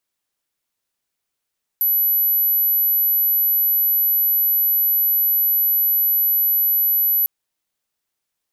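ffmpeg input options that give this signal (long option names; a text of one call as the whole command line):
ffmpeg -f lavfi -i "sine=frequency=11900:duration=5.45:sample_rate=44100,volume=3.56dB" out.wav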